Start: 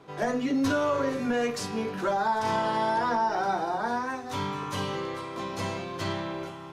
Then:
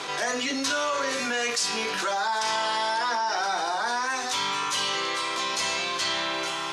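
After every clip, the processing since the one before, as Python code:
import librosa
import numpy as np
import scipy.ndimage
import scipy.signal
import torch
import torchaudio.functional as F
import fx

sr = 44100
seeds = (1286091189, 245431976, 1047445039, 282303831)

y = fx.weighting(x, sr, curve='ITU-R 468')
y = fx.env_flatten(y, sr, amount_pct=70)
y = y * librosa.db_to_amplitude(-2.0)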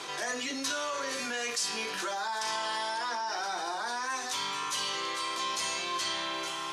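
y = fx.high_shelf(x, sr, hz=10000.0, db=10.0)
y = fx.comb_fb(y, sr, f0_hz=350.0, decay_s=0.16, harmonics='odd', damping=0.0, mix_pct=60)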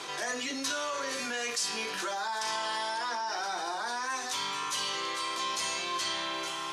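y = x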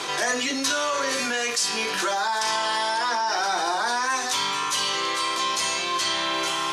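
y = fx.rider(x, sr, range_db=10, speed_s=0.5)
y = y * librosa.db_to_amplitude(8.5)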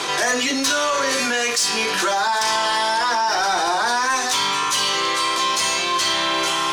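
y = 10.0 ** (-17.5 / 20.0) * np.tanh(x / 10.0 ** (-17.5 / 20.0))
y = y * librosa.db_to_amplitude(6.0)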